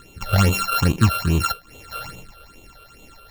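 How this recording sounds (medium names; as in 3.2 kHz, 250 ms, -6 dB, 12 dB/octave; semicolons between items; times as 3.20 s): a buzz of ramps at a fixed pitch in blocks of 32 samples; phasing stages 8, 2.4 Hz, lowest notch 250–1600 Hz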